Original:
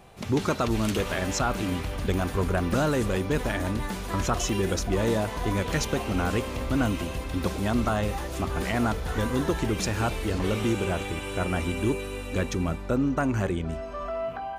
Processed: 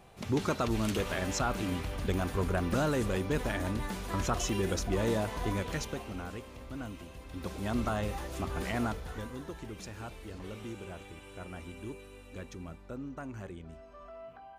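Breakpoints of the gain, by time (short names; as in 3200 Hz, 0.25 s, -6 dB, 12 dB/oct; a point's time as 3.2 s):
5.45 s -5 dB
6.39 s -16 dB
7.15 s -16 dB
7.75 s -6.5 dB
8.82 s -6.5 dB
9.4 s -16.5 dB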